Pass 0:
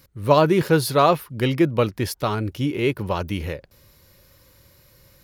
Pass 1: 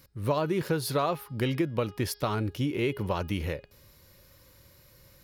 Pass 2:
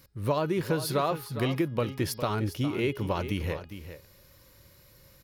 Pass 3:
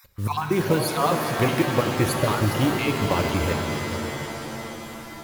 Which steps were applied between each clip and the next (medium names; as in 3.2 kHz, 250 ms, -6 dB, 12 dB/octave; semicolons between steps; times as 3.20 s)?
de-hum 413.6 Hz, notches 13; compression 6:1, threshold -21 dBFS, peak gain reduction 10.5 dB; trim -3 dB
delay 407 ms -11.5 dB
random holes in the spectrogram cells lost 28%; modulation noise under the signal 22 dB; pitch-shifted reverb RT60 3.9 s, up +7 st, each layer -2 dB, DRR 5 dB; trim +6.5 dB